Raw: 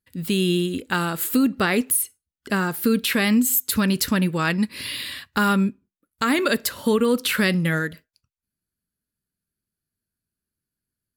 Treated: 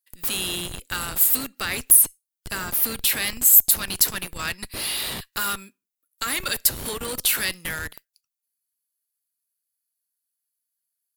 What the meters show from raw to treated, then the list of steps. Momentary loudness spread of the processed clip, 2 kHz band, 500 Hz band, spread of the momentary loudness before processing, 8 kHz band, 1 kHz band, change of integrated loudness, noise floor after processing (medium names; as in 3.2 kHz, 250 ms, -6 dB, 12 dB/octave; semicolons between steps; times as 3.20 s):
16 LU, -4.5 dB, -13.0 dB, 7 LU, +7.0 dB, -6.5 dB, +1.5 dB, under -85 dBFS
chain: differentiator; in parallel at -8 dB: Schmitt trigger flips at -35.5 dBFS; on the sum: trim +4.5 dB